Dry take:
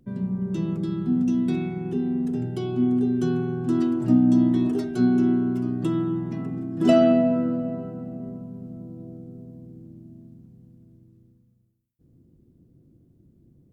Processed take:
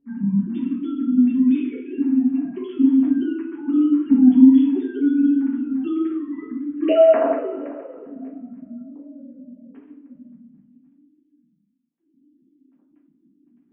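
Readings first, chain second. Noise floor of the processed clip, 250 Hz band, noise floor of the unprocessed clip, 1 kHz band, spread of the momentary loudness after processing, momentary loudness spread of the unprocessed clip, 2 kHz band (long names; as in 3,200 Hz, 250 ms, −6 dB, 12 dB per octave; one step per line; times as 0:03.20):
−65 dBFS, +4.5 dB, −60 dBFS, +2.5 dB, 21 LU, 19 LU, +0.5 dB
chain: three sine waves on the formant tracks
coupled-rooms reverb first 0.41 s, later 1.8 s, from −18 dB, DRR −4.5 dB
level −1 dB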